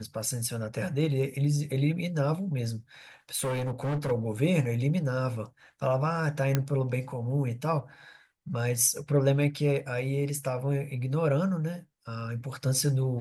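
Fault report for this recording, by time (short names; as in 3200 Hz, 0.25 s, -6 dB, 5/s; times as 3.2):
3.36–4.12 clipped -26.5 dBFS
6.55 pop -11 dBFS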